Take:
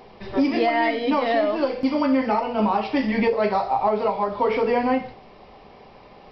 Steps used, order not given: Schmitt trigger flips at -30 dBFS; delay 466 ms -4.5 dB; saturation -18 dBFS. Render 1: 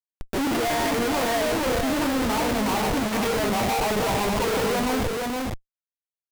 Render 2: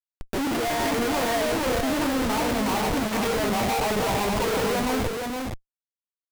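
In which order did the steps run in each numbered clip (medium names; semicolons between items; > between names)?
Schmitt trigger > delay > saturation; saturation > Schmitt trigger > delay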